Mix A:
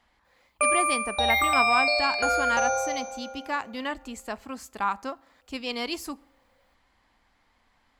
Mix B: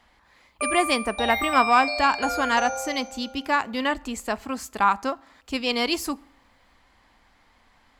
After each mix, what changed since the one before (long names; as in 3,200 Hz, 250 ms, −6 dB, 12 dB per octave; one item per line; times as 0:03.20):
speech +7.0 dB
background −4.5 dB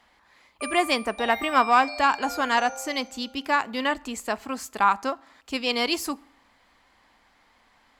background −7.5 dB
master: add low-shelf EQ 140 Hz −9.5 dB